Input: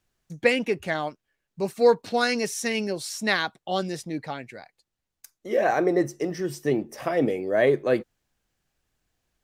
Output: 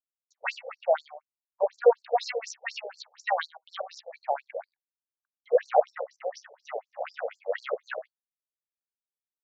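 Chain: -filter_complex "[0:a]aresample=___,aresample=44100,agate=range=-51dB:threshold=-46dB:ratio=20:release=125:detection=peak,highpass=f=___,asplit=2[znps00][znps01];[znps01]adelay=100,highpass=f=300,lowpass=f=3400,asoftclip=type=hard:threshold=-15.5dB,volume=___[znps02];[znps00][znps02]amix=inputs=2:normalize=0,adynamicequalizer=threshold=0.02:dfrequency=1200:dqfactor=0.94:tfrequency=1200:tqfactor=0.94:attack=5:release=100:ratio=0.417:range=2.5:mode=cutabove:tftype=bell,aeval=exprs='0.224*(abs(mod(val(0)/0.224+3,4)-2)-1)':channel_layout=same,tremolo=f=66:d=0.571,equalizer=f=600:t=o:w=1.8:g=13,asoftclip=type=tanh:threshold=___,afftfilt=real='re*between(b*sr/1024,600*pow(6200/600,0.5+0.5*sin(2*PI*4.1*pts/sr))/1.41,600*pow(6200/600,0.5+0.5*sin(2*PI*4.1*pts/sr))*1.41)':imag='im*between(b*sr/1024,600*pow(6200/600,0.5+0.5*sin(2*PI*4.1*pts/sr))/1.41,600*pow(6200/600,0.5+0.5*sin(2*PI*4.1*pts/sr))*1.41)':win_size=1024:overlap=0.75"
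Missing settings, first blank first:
16000, 140, -21dB, -8dB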